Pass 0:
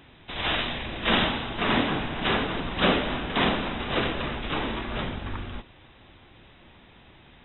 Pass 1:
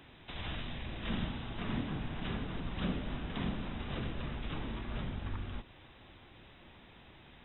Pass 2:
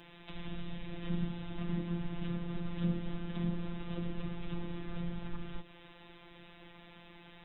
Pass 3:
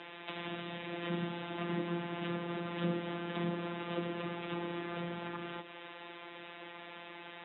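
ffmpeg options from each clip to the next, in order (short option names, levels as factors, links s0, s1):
-filter_complex "[0:a]acrossover=split=210[s0][s1];[s1]acompressor=threshold=0.00708:ratio=3[s2];[s0][s2]amix=inputs=2:normalize=0,volume=0.631"
-filter_complex "[0:a]afftfilt=real='hypot(re,im)*cos(PI*b)':imag='0':win_size=1024:overlap=0.75,acrossover=split=460[s0][s1];[s1]acompressor=threshold=0.002:ratio=5[s2];[s0][s2]amix=inputs=2:normalize=0,volume=1.88"
-af "highpass=360,lowpass=3200,volume=2.99"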